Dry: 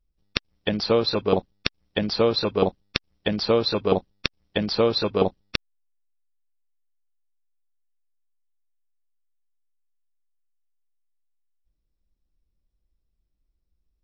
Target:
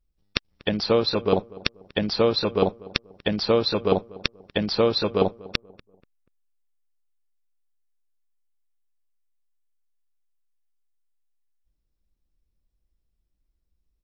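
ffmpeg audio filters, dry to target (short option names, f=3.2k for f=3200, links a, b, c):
-filter_complex "[0:a]asplit=2[a][b];[b]adelay=241,lowpass=f=1.2k:p=1,volume=-20dB,asplit=2[c][d];[d]adelay=241,lowpass=f=1.2k:p=1,volume=0.38,asplit=2[e][f];[f]adelay=241,lowpass=f=1.2k:p=1,volume=0.38[g];[a][c][e][g]amix=inputs=4:normalize=0"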